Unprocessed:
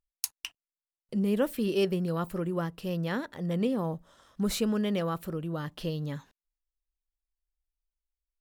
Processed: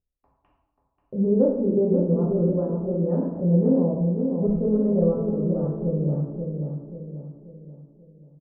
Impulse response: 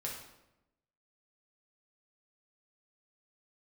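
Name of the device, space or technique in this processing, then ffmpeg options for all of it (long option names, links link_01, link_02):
next room: -filter_complex "[0:a]asettb=1/sr,asplit=3[link_01][link_02][link_03];[link_01]atrim=end=0.394[link_04];[link_02]atrim=start=0.39:end=1.33,asetpts=PTS-STARTPTS,afade=type=in:duration=0.004:curve=qsin,afade=type=out:start_time=0.936:duration=0.004:curve=qsin,highshelf=frequency=2100:gain=9[link_05];[link_03]atrim=start=1.326[link_06];[link_04][link_05]acrossfade=duration=0.004:curve1=hsin:curve2=qsin[link_07];[link_07][link_06]acrossfade=duration=0.004:curve1=qsin:curve2=hsin,lowpass=frequency=660:width=0.5412,lowpass=frequency=660:width=1.3066[link_08];[1:a]atrim=start_sample=2205[link_09];[link_08][link_09]afir=irnorm=-1:irlink=0,asplit=2[link_10][link_11];[link_11]adelay=536,lowpass=frequency=1700:poles=1,volume=-5dB,asplit=2[link_12][link_13];[link_13]adelay=536,lowpass=frequency=1700:poles=1,volume=0.45,asplit=2[link_14][link_15];[link_15]adelay=536,lowpass=frequency=1700:poles=1,volume=0.45,asplit=2[link_16][link_17];[link_17]adelay=536,lowpass=frequency=1700:poles=1,volume=0.45,asplit=2[link_18][link_19];[link_19]adelay=536,lowpass=frequency=1700:poles=1,volume=0.45,asplit=2[link_20][link_21];[link_21]adelay=536,lowpass=frequency=1700:poles=1,volume=0.45[link_22];[link_10][link_12][link_14][link_16][link_18][link_20][link_22]amix=inputs=7:normalize=0,volume=6.5dB"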